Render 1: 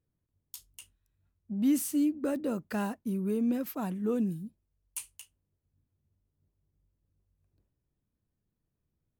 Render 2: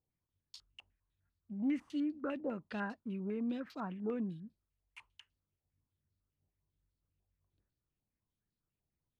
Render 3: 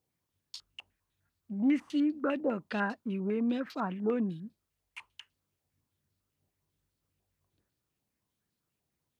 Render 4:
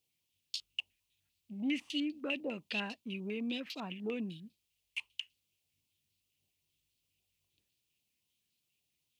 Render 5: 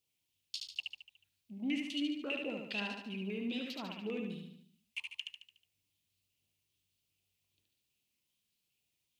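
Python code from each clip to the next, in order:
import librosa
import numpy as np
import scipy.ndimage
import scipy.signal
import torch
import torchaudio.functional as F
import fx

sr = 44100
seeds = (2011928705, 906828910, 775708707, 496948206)

y1 = fx.filter_held_lowpass(x, sr, hz=10.0, low_hz=800.0, high_hz=4500.0)
y1 = y1 * 10.0 ** (-8.5 / 20.0)
y2 = fx.highpass(y1, sr, hz=180.0, slope=6)
y2 = y2 * 10.0 ** (8.5 / 20.0)
y3 = fx.high_shelf_res(y2, sr, hz=2000.0, db=10.5, q=3.0)
y3 = y3 * 10.0 ** (-7.5 / 20.0)
y4 = fx.echo_feedback(y3, sr, ms=73, feedback_pct=50, wet_db=-4.0)
y4 = y4 * 10.0 ** (-2.5 / 20.0)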